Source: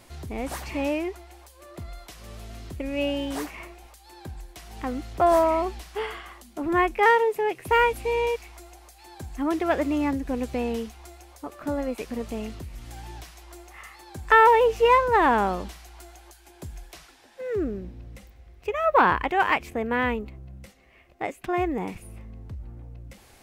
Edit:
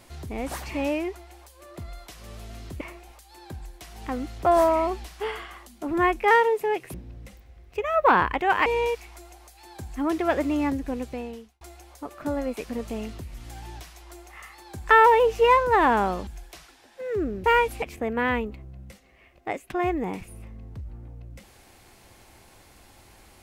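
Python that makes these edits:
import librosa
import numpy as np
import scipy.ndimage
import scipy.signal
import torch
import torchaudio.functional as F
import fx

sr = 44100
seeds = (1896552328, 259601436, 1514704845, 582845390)

y = fx.edit(x, sr, fx.cut(start_s=2.81, length_s=0.75),
    fx.swap(start_s=7.69, length_s=0.38, other_s=17.84, other_length_s=1.72),
    fx.fade_out_span(start_s=10.17, length_s=0.85),
    fx.cut(start_s=15.68, length_s=0.99), tone=tone)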